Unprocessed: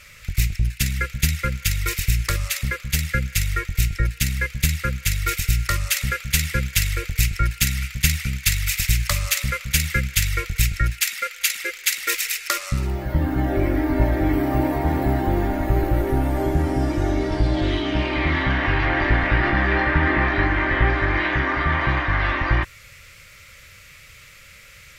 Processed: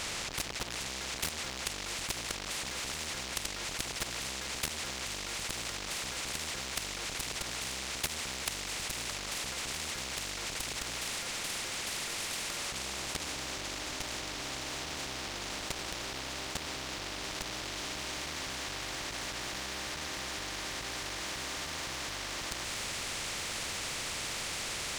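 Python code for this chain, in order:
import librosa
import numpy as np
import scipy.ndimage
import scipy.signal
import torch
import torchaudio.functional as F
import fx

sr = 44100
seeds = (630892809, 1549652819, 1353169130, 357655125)

p1 = fx.delta_mod(x, sr, bps=64000, step_db=-18.0)
p2 = fx.hum_notches(p1, sr, base_hz=60, count=4)
p3 = 10.0 ** (-17.5 / 20.0) * np.tanh(p2 / 10.0 ** (-17.5 / 20.0))
p4 = p2 + F.gain(torch.from_numpy(p3), -9.5).numpy()
p5 = scipy.signal.sosfilt(scipy.signal.butter(2, 4200.0, 'lowpass', fs=sr, output='sos'), p4)
p6 = fx.quant_companded(p5, sr, bits=8)
p7 = fx.echo_wet_highpass(p6, sr, ms=888, feedback_pct=74, hz=2800.0, wet_db=-4.0)
p8 = fx.clip_asym(p7, sr, top_db=-18.5, bottom_db=-7.0)
p9 = fx.rider(p8, sr, range_db=10, speed_s=2.0)
p10 = fx.room_flutter(p9, sr, wall_m=10.2, rt60_s=0.2)
p11 = fx.level_steps(p10, sr, step_db=17)
p12 = fx.peak_eq(p11, sr, hz=1500.0, db=-6.0, octaves=0.77)
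p13 = fx.spectral_comp(p12, sr, ratio=4.0)
y = F.gain(torch.from_numpy(p13), -7.5).numpy()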